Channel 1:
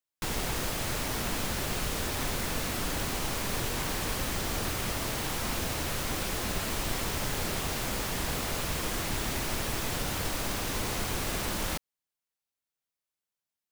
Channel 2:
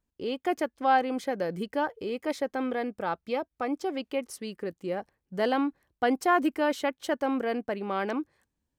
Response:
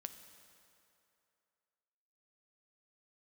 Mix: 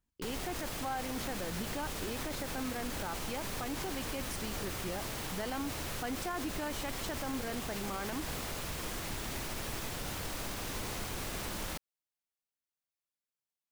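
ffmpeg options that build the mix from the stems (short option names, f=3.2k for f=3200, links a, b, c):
-filter_complex "[0:a]volume=-6.5dB[a];[1:a]equalizer=f=480:w=1.5:g=-6,acompressor=threshold=-35dB:ratio=1.5,volume=-1.5dB[b];[a][b]amix=inputs=2:normalize=0,alimiter=level_in=4dB:limit=-24dB:level=0:latency=1:release=35,volume=-4dB"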